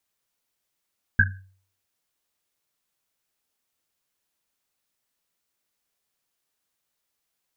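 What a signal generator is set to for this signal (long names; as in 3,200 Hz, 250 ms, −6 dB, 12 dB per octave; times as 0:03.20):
drum after Risset, pitch 95 Hz, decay 0.50 s, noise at 1,600 Hz, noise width 140 Hz, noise 50%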